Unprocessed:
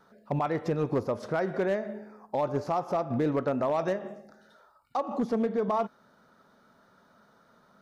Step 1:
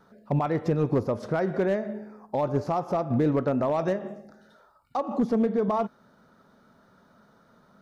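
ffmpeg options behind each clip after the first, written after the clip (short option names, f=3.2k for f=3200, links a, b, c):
-af "lowshelf=f=350:g=7"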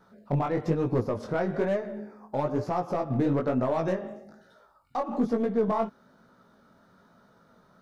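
-filter_complex "[0:a]asplit=2[a][b];[b]aeval=exprs='clip(val(0),-1,0.0141)':c=same,volume=-10.5dB[c];[a][c]amix=inputs=2:normalize=0,flanger=delay=16:depth=6.9:speed=1.1"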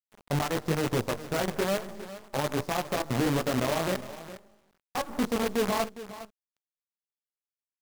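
-af "acrusher=bits=5:dc=4:mix=0:aa=0.000001,aecho=1:1:409:0.188,volume=-2.5dB"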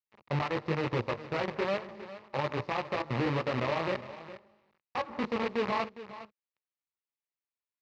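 -af "highpass=120,equalizer=f=180:t=q:w=4:g=-9,equalizer=f=270:t=q:w=4:g=-10,equalizer=f=420:t=q:w=4:g=-5,equalizer=f=690:t=q:w=4:g=-8,equalizer=f=1.5k:t=q:w=4:g=-7,equalizer=f=3.3k:t=q:w=4:g=-8,lowpass=f=3.7k:w=0.5412,lowpass=f=3.7k:w=1.3066,volume=2dB"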